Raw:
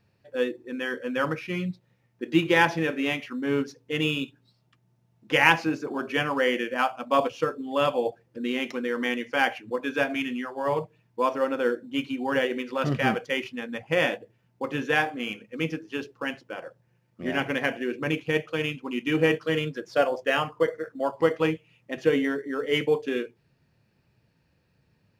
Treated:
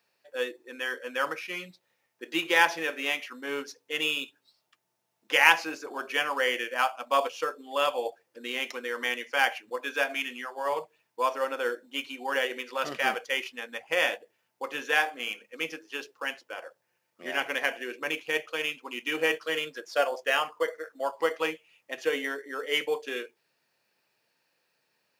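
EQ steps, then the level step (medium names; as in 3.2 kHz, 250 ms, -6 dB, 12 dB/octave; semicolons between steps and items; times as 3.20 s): high-pass 560 Hz 12 dB/octave; treble shelf 5 kHz +8.5 dB; -1.0 dB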